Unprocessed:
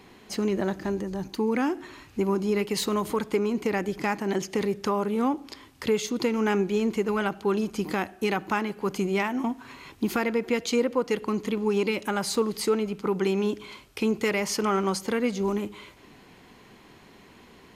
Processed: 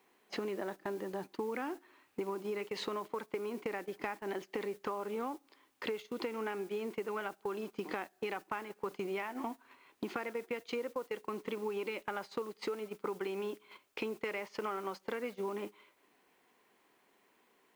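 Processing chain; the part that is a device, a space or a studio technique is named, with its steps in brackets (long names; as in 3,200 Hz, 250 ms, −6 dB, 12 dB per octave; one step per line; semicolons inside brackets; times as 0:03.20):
baby monitor (band-pass filter 380–3,000 Hz; downward compressor 10 to 1, threshold −36 dBFS, peak gain reduction 15.5 dB; white noise bed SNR 22 dB; noise gate −43 dBFS, range −17 dB)
level +1.5 dB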